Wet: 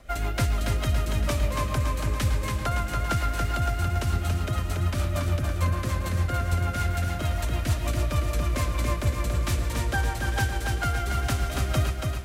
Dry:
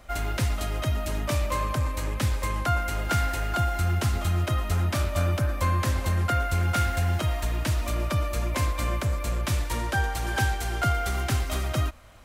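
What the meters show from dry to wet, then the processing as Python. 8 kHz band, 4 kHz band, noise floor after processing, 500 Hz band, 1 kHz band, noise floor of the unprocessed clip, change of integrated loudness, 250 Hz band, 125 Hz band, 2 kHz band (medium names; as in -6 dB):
-0.5 dB, -0.5 dB, -31 dBFS, -0.5 dB, -2.0 dB, -31 dBFS, 0.0 dB, +0.5 dB, +0.5 dB, -1.0 dB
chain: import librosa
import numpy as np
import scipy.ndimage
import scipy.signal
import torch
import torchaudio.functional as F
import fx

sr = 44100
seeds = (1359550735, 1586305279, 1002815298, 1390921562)

y = fx.rider(x, sr, range_db=10, speed_s=0.5)
y = fx.rotary(y, sr, hz=6.7)
y = fx.echo_feedback(y, sr, ms=282, feedback_pct=56, wet_db=-4.5)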